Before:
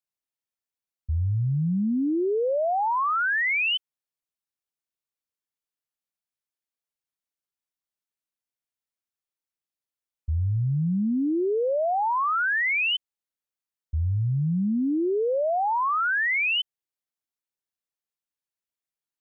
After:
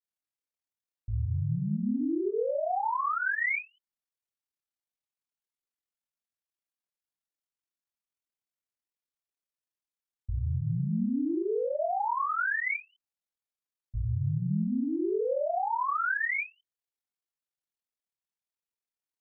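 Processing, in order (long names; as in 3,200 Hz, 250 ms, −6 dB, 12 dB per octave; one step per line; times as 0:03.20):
ring modulation 20 Hz
granular cloud 97 ms, grains 24 per second, spray 14 ms, pitch spread up and down by 0 semitones
every ending faded ahead of time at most 300 dB per second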